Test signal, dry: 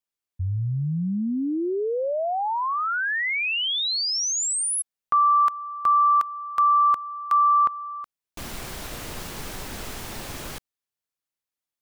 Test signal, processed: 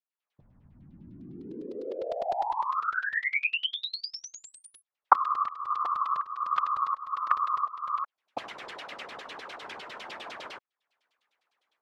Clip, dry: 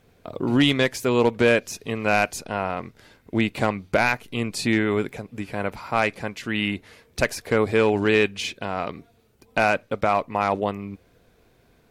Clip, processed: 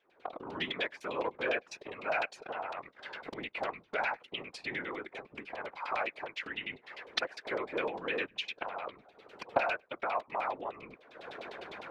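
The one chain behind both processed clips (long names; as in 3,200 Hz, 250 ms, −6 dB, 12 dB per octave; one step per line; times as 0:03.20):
camcorder AGC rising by 62 dB per second, up to +31 dB
high-pass filter 460 Hz 12 dB per octave
high-shelf EQ 7,300 Hz +6 dB
auto-filter low-pass saw down 9.9 Hz 660–4,000 Hz
random phases in short frames
level −14.5 dB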